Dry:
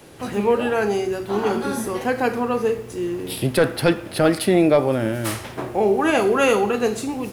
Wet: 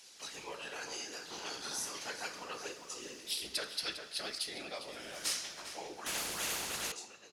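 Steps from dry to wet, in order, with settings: ending faded out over 1.40 s; vocal rider within 4 dB 0.5 s; band-pass 5500 Hz, Q 2.2; whisperiser; outdoor echo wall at 69 m, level -7 dB; on a send at -11.5 dB: reverb RT60 1.1 s, pre-delay 3 ms; 6.06–6.92 on the sum: spectral compressor 4:1

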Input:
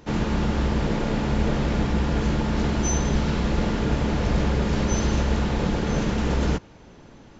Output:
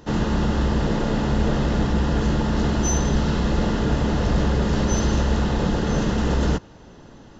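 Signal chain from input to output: notch 2300 Hz, Q 5.1; in parallel at -9.5 dB: overloaded stage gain 19.5 dB

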